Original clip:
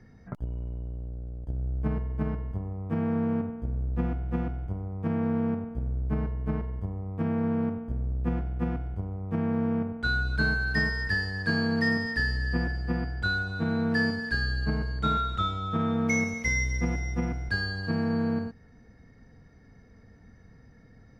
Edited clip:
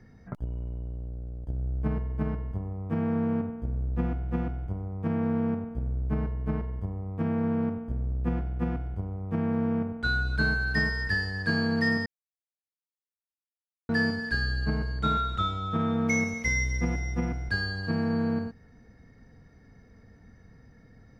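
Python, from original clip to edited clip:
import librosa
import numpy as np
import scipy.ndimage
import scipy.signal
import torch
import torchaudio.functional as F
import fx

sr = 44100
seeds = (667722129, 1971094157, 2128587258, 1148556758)

y = fx.edit(x, sr, fx.silence(start_s=12.06, length_s=1.83), tone=tone)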